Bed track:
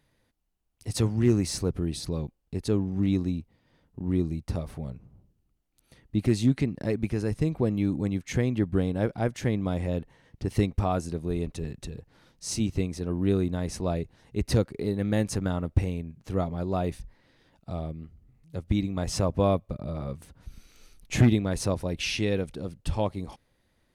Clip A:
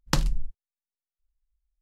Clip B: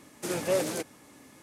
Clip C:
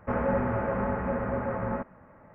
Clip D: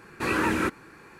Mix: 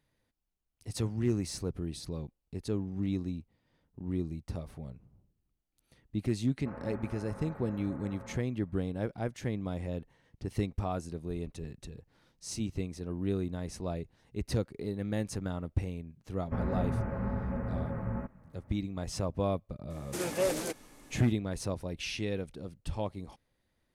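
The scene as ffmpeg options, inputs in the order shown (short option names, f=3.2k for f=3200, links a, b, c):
-filter_complex "[3:a]asplit=2[a][b];[0:a]volume=-7.5dB[c];[b]bass=f=250:g=13,treble=f=4k:g=12[d];[a]atrim=end=2.34,asetpts=PTS-STARTPTS,volume=-17dB,afade=t=in:d=0.004:c=hsin,afade=t=out:st=2.336:d=0.004:c=hsin,adelay=290178S[e];[d]atrim=end=2.34,asetpts=PTS-STARTPTS,volume=-11.5dB,afade=t=in:d=0.004:c=hsin,afade=t=out:st=2.336:d=0.004:c=hsin,adelay=16440[f];[2:a]atrim=end=1.42,asetpts=PTS-STARTPTS,volume=-2.5dB,afade=t=in:d=0.004:c=hsin,afade=t=out:st=1.416:d=0.004:c=hsin,adelay=19900[g];[c][e][f][g]amix=inputs=4:normalize=0"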